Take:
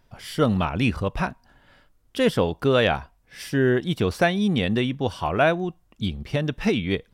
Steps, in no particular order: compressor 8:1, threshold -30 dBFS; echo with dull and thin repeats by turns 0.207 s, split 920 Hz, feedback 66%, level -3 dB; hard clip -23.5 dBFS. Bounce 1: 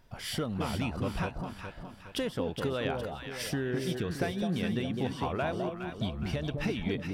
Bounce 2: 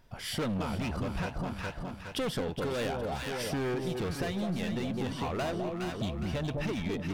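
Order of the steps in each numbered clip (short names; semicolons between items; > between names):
compressor > hard clip > echo with dull and thin repeats by turns; hard clip > echo with dull and thin repeats by turns > compressor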